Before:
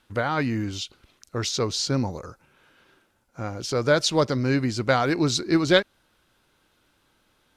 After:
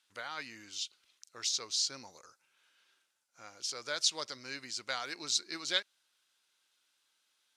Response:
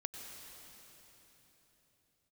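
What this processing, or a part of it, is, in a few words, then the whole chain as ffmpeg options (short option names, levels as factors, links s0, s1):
piezo pickup straight into a mixer: -af "lowpass=7300,aderivative"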